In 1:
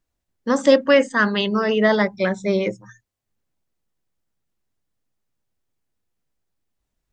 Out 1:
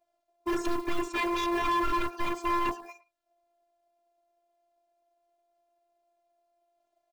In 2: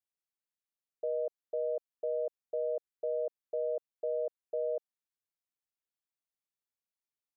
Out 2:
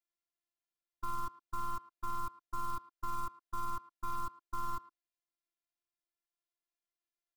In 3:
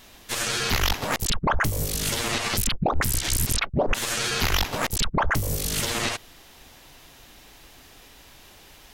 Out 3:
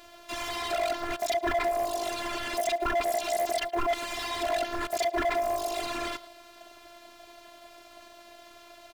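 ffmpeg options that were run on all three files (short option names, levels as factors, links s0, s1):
-filter_complex "[0:a]acontrast=40,aeval=exprs='val(0)*sin(2*PI*630*n/s)':c=same,asoftclip=type=tanh:threshold=0.708,tremolo=f=260:d=0.333,lowpass=f=3600:p=1,acrusher=bits=5:mode=log:mix=0:aa=0.000001,afftfilt=real='hypot(re,im)*cos(PI*b)':imag='0':win_size=512:overlap=0.75,alimiter=limit=0.224:level=0:latency=1:release=67,asplit=2[s0][s1];[s1]adelay=110,highpass=300,lowpass=3400,asoftclip=type=hard:threshold=0.075,volume=0.126[s2];[s0][s2]amix=inputs=2:normalize=0,asoftclip=type=hard:threshold=0.0562,volume=1.26"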